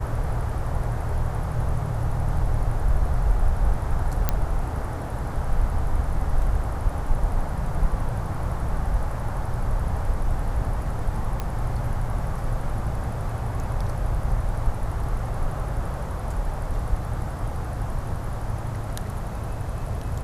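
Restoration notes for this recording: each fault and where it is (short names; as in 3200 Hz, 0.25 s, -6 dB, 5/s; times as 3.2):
4.29 pop -7 dBFS
11.4 pop -15 dBFS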